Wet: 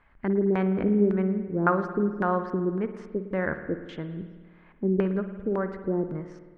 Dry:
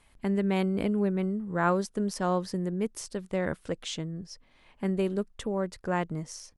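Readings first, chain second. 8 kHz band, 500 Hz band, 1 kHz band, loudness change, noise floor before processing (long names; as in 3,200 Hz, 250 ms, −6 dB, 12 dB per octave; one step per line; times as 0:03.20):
below −25 dB, +3.5 dB, +2.0 dB, +3.0 dB, −63 dBFS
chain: auto-filter low-pass square 1.8 Hz 370–1,600 Hz
spring reverb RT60 1.5 s, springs 53 ms, chirp 55 ms, DRR 9 dB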